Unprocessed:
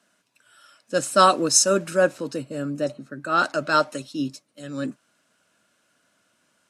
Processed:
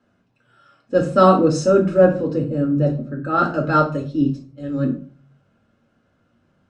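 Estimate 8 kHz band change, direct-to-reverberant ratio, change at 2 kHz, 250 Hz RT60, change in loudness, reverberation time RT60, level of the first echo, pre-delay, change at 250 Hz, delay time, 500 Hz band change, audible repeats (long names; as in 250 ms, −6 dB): −16.0 dB, 0.5 dB, −2.5 dB, 0.45 s, +3.5 dB, 0.45 s, no echo audible, 4 ms, +9.5 dB, no echo audible, +6.0 dB, no echo audible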